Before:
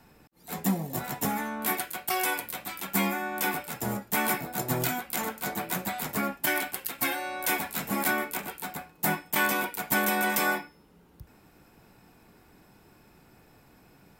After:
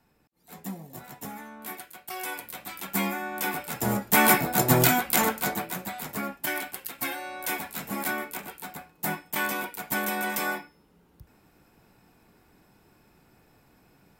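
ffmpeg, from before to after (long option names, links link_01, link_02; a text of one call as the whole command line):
ffmpeg -i in.wav -af "volume=8.5dB,afade=type=in:start_time=2.05:duration=0.76:silence=0.354813,afade=type=in:start_time=3.51:duration=0.8:silence=0.334965,afade=type=out:start_time=5.23:duration=0.48:silence=0.266073" out.wav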